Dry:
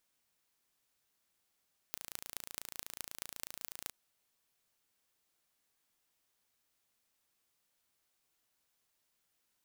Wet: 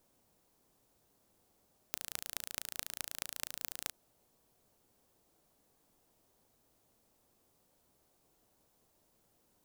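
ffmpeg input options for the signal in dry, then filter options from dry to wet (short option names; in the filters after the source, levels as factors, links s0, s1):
-f lavfi -i "aevalsrc='0.282*eq(mod(n,1569),0)*(0.5+0.5*eq(mod(n,9414),0))':d=1.97:s=44100"
-filter_complex "[0:a]highshelf=f=2700:g=10,acrossover=split=840[s0][s1];[s0]aeval=exprs='0.0126*sin(PI/2*7.94*val(0)/0.0126)':c=same[s2];[s2][s1]amix=inputs=2:normalize=0,aeval=exprs='(tanh(3.16*val(0)+0.75)-tanh(0.75))/3.16':c=same"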